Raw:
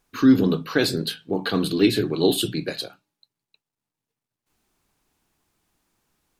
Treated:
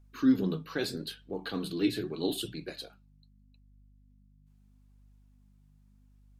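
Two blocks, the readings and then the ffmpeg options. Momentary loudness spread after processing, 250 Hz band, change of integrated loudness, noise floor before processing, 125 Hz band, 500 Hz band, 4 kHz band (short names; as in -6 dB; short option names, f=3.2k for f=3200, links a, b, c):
15 LU, -9.5 dB, -10.5 dB, under -85 dBFS, -11.5 dB, -12.0 dB, -11.5 dB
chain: -af "aeval=exprs='val(0)+0.00447*(sin(2*PI*50*n/s)+sin(2*PI*2*50*n/s)/2+sin(2*PI*3*50*n/s)/3+sin(2*PI*4*50*n/s)/4+sin(2*PI*5*50*n/s)/5)':c=same,flanger=delay=1.3:depth=5.6:regen=62:speed=0.79:shape=triangular,volume=-7.5dB"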